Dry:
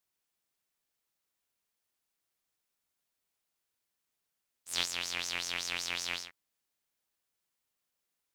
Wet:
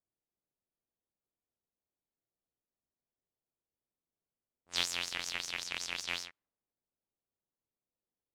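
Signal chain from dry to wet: 5.05–6.06 ring modulator 530 Hz -> 87 Hz; low-pass opened by the level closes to 570 Hz, open at -35 dBFS

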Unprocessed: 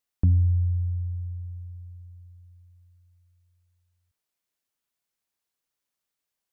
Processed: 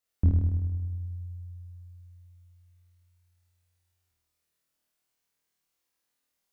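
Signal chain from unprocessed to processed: flutter echo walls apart 4.4 m, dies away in 1.4 s; gain -2.5 dB

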